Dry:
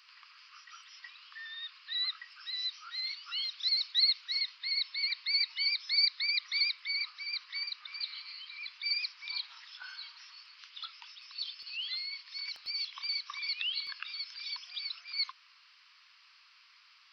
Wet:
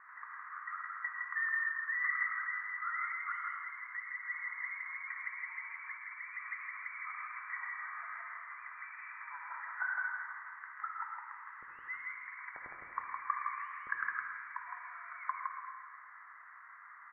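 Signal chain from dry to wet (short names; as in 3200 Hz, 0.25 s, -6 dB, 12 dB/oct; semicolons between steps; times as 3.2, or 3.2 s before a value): echo 0.162 s -3 dB; limiter -26 dBFS, peak gain reduction 8.5 dB; Chebyshev low-pass 2000 Hz, order 8; on a send at -3 dB: reverb RT60 1.9 s, pre-delay 48 ms; on the sum: flange 1.2 Hz, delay 6.1 ms, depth 4.9 ms, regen -76%; gain +16 dB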